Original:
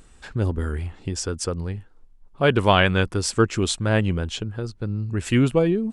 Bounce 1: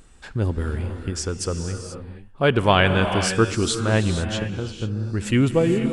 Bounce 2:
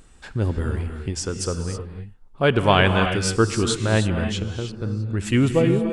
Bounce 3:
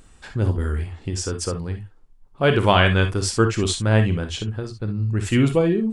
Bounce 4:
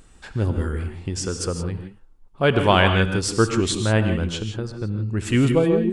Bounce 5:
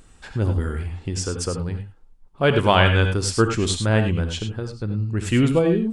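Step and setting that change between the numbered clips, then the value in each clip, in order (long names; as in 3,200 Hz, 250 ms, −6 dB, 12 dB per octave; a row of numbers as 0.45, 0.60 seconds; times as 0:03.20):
reverb whose tail is shaped and stops, gate: 510, 340, 80, 190, 120 milliseconds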